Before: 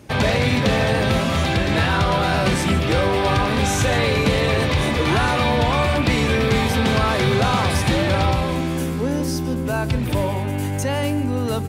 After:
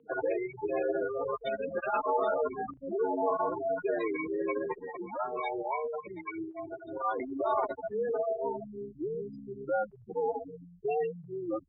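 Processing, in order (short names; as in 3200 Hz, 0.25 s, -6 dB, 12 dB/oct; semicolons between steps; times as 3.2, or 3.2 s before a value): spectral gate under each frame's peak -10 dB strong; bell 1900 Hz -11 dB 0.45 oct; limiter -17 dBFS, peak gain reduction 8 dB; 4.78–7.2 harmonic tremolo 3.7 Hz, depth 100%, crossover 660 Hz; mistuned SSB -120 Hz 530–3400 Hz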